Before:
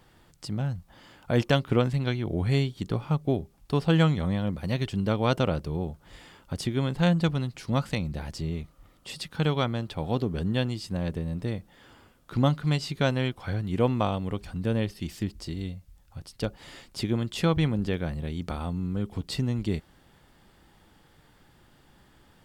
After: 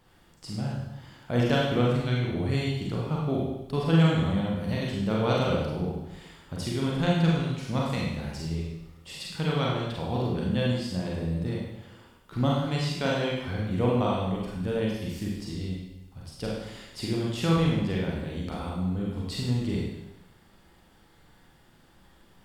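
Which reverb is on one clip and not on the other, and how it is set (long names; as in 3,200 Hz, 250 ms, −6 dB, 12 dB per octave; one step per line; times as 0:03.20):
four-comb reverb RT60 0.94 s, combs from 33 ms, DRR −4 dB
level −5 dB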